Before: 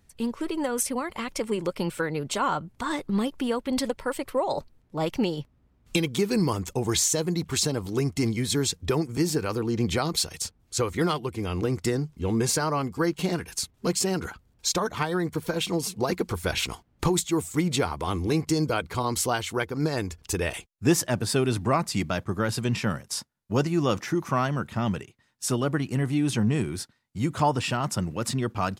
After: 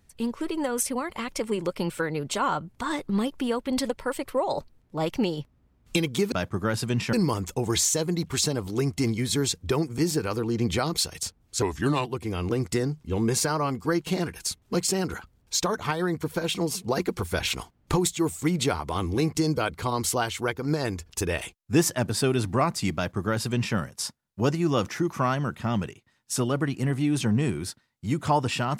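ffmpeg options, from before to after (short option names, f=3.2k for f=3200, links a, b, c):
-filter_complex "[0:a]asplit=5[a][b][c][d][e];[a]atrim=end=6.322[f];[b]atrim=start=22.068:end=22.882[g];[c]atrim=start=6.318:end=10.814[h];[d]atrim=start=10.81:end=11.17,asetpts=PTS-STARTPTS,asetrate=37044,aresample=44100[i];[e]atrim=start=11.166[j];[f][g]acrossfade=d=0.004:c1=hsin:c2=hsin[k];[k][h]acrossfade=d=0.004:c1=hsin:c2=hsin[l];[l][i]acrossfade=d=0.004:c1=hsin:c2=hsin[m];[m][j]acrossfade=d=0.004:c1=hsin:c2=hsin"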